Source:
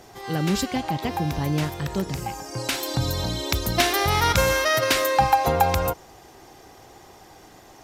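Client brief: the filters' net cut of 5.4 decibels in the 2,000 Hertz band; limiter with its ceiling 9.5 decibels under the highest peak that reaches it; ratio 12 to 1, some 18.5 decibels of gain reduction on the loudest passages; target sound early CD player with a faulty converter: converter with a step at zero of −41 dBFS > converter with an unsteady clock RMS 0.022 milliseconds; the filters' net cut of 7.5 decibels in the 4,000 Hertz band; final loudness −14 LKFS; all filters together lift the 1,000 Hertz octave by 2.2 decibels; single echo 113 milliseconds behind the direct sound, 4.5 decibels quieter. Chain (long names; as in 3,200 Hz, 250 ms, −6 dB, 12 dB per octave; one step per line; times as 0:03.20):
parametric band 1,000 Hz +4.5 dB
parametric band 2,000 Hz −6.5 dB
parametric band 4,000 Hz −8 dB
downward compressor 12 to 1, threshold −30 dBFS
brickwall limiter −27 dBFS
single-tap delay 113 ms −4.5 dB
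converter with a step at zero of −41 dBFS
converter with an unsteady clock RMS 0.022 ms
level +20.5 dB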